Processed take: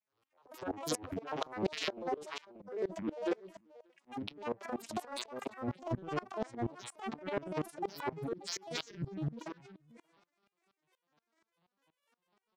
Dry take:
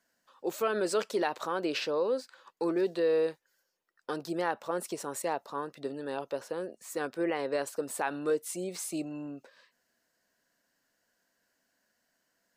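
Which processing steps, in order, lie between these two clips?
vocoder on a note that slides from E3, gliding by +11 st; bass shelf 400 Hz -11.5 dB; in parallel at -8.5 dB: crossover distortion -50 dBFS; on the sum: granulator, spray 33 ms, pitch spread up and down by 12 st; reverse; compression 10:1, threshold -39 dBFS, peak gain reduction 13 dB; reverse; delay 581 ms -22 dB; transient shaper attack -11 dB, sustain +12 dB; sawtooth tremolo in dB swelling 4.2 Hz, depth 23 dB; trim +12.5 dB

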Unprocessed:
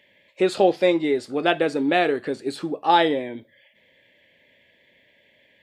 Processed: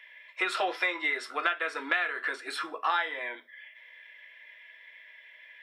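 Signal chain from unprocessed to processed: resonant high-pass 1.3 kHz, resonance Q 2.2; reverberation RT60 0.15 s, pre-delay 3 ms, DRR 3.5 dB; compression 12:1, threshold -23 dBFS, peak gain reduction 16 dB; trim -1.5 dB

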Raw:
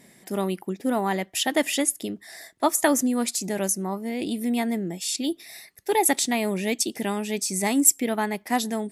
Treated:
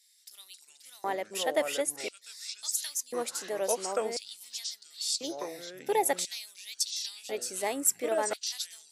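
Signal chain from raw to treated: ever faster or slower copies 174 ms, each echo -5 st, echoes 3, each echo -6 dB; LFO high-pass square 0.48 Hz 500–4300 Hz; trim -8.5 dB

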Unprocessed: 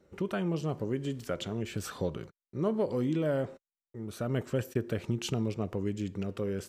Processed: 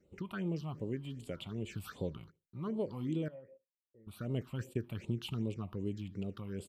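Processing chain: 3.28–4.07 s: cascade formant filter e; feedback delay 76 ms, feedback 17%, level -23 dB; phase shifter stages 6, 2.6 Hz, lowest notch 420–1700 Hz; trim -5 dB

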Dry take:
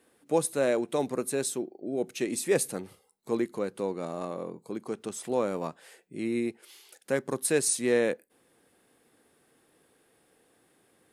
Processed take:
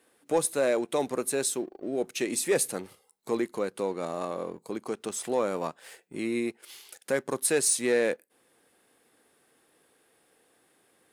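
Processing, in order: bass shelf 310 Hz -8 dB; in parallel at -2.5 dB: compression, threshold -42 dBFS, peak gain reduction 18.5 dB; on the sum: waveshaping leveller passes 1; trim -1.5 dB

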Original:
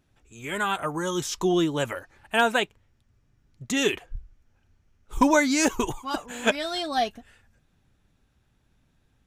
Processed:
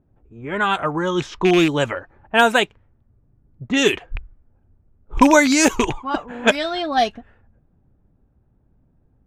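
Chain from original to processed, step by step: rattle on loud lows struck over -30 dBFS, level -19 dBFS; level-controlled noise filter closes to 660 Hz, open at -18 dBFS; trim +7 dB

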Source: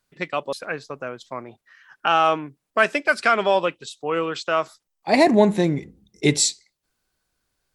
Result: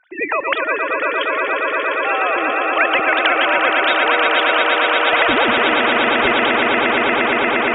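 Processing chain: formants replaced by sine waves; 1.24–2.22 s: low-pass 1.4 kHz 6 dB/octave; echo with a slow build-up 117 ms, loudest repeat 8, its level -11 dB; spectrum-flattening compressor 4:1

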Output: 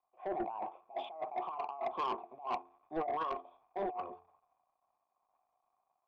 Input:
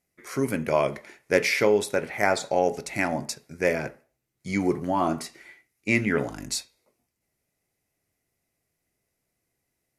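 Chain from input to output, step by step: gliding tape speed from 143% -> 186%; peaking EQ 360 Hz +12.5 dB 0.25 oct; expander -50 dBFS; crackle 470 per s -41 dBFS; cascade formant filter a; de-hum 87.71 Hz, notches 5; compressor with a negative ratio -42 dBFS, ratio -1; treble shelf 3.3 kHz +6 dB; saturation -35.5 dBFS, distortion -13 dB; three bands expanded up and down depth 70%; trim +5.5 dB

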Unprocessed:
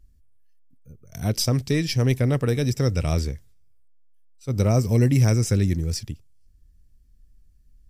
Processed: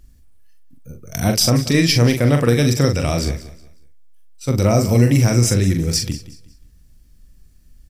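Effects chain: in parallel at +1.5 dB: compression, threshold -29 dBFS, peak gain reduction 13.5 dB; on the sum: peak limiter -11.5 dBFS, peak gain reduction 5.5 dB; bass shelf 140 Hz -8.5 dB; band-stop 420 Hz, Q 12; doubling 42 ms -6 dB; on a send: feedback delay 183 ms, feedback 29%, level -16.5 dB; on the sum: trim +7 dB

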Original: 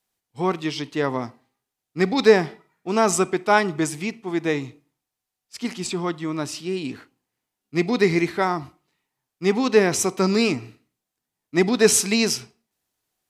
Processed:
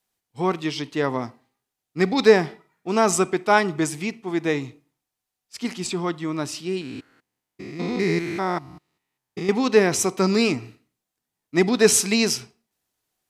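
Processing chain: 6.81–9.49 s: spectrogram pixelated in time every 200 ms

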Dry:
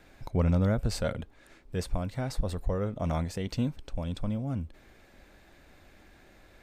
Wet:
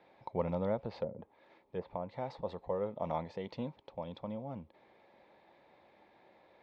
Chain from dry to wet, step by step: cabinet simulation 210–3700 Hz, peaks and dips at 270 Hz -6 dB, 530 Hz +5 dB, 900 Hz +10 dB, 1.5 kHz -10 dB, 2.8 kHz -6 dB; 0.78–2.10 s: low-pass that closes with the level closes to 330 Hz, closed at -25 dBFS; trim -5 dB

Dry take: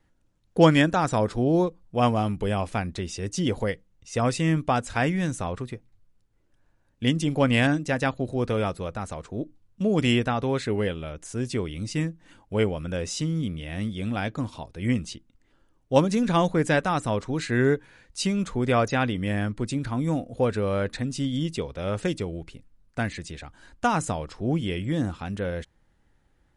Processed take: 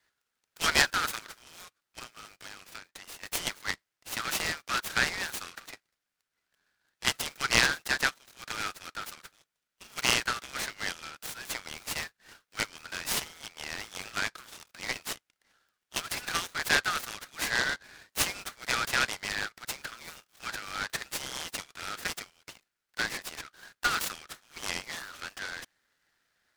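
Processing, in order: steep high-pass 1.3 kHz 72 dB/octave; 1.18–3.23 s: compression 16:1, threshold -45 dBFS, peak gain reduction 17 dB; delay time shaken by noise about 2.3 kHz, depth 0.058 ms; trim +3.5 dB

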